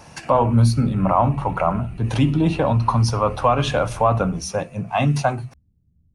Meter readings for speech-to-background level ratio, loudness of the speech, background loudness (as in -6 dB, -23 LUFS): 19.0 dB, -20.0 LUFS, -39.0 LUFS